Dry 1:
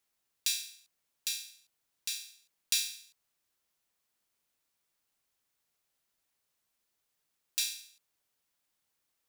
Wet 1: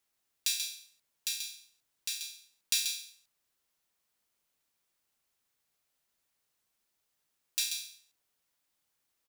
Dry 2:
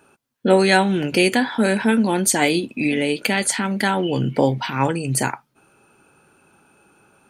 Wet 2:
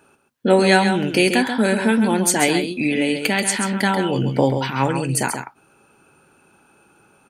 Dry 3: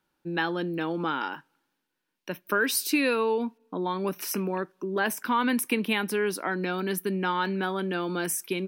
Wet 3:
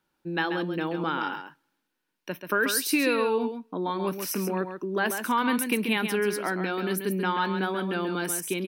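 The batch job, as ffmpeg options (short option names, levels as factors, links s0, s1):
-af "aecho=1:1:135:0.422"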